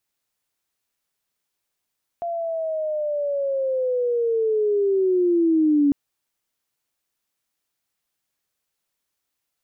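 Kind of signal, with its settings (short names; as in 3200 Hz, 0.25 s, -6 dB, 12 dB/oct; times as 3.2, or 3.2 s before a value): chirp linear 690 Hz -> 280 Hz -24 dBFS -> -14 dBFS 3.70 s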